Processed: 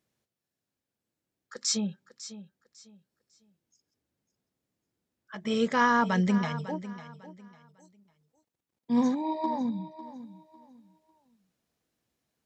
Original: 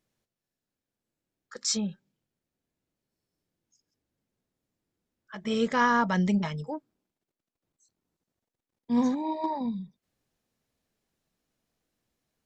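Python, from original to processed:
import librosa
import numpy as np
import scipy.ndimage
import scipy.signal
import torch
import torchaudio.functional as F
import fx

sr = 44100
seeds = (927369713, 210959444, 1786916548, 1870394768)

p1 = scipy.signal.sosfilt(scipy.signal.butter(2, 59.0, 'highpass', fs=sr, output='sos'), x)
y = p1 + fx.echo_feedback(p1, sr, ms=550, feedback_pct=27, wet_db=-14.5, dry=0)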